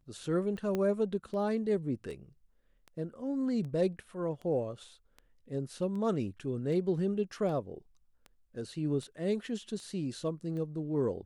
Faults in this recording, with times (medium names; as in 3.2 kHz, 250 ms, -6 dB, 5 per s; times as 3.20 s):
tick 78 rpm -33 dBFS
0.75 s: pop -20 dBFS